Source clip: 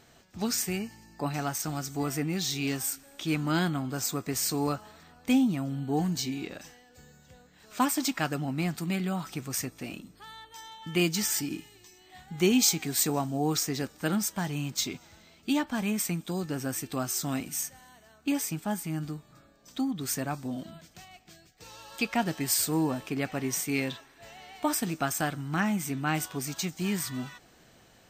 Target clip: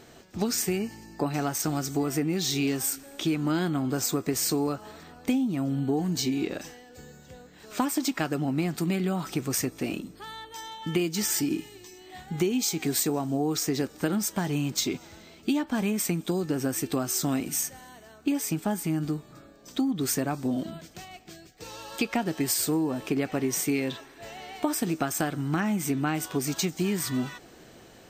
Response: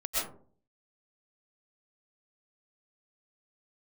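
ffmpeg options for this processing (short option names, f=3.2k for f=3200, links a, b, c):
-af "equalizer=f=370:t=o:w=1.2:g=7,acompressor=threshold=-28dB:ratio=10,volume=5dB"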